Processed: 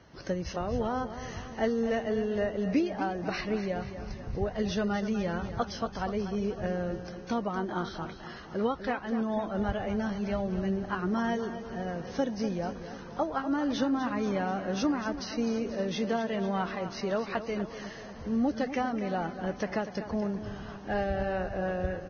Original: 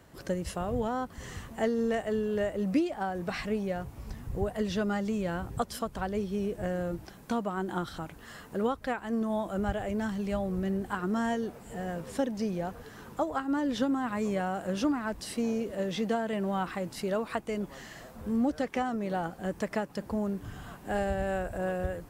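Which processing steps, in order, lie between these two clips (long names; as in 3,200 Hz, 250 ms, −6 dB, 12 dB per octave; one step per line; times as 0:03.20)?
repeating echo 245 ms, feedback 56%, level −11 dB
Ogg Vorbis 16 kbit/s 16,000 Hz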